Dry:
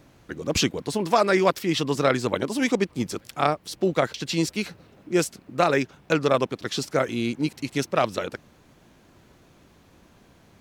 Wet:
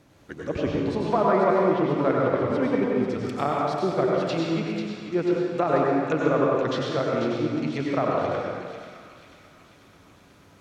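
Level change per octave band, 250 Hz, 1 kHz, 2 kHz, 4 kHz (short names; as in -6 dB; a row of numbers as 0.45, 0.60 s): +1.5, +0.5, -4.5, -8.5 dB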